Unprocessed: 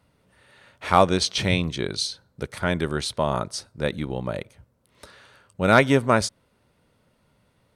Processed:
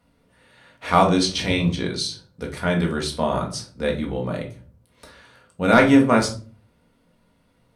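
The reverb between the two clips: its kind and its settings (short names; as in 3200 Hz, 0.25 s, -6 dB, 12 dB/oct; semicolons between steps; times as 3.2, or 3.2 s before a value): shoebox room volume 270 m³, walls furnished, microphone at 1.8 m; gain -2 dB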